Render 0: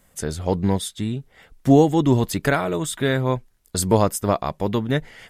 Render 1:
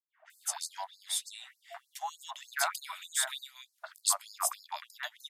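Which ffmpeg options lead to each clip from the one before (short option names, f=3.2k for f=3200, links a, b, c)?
-filter_complex "[0:a]acompressor=threshold=-20dB:ratio=10,acrossover=split=490|2100[a][b][c];[b]adelay=90[d];[c]adelay=300[e];[a][d][e]amix=inputs=3:normalize=0,afftfilt=real='re*gte(b*sr/1024,580*pow(4200/580,0.5+0.5*sin(2*PI*3.3*pts/sr)))':imag='im*gte(b*sr/1024,580*pow(4200/580,0.5+0.5*sin(2*PI*3.3*pts/sr)))':win_size=1024:overlap=0.75"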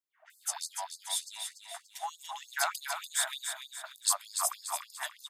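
-af "aecho=1:1:290|580|870|1160|1450:0.447|0.192|0.0826|0.0355|0.0153"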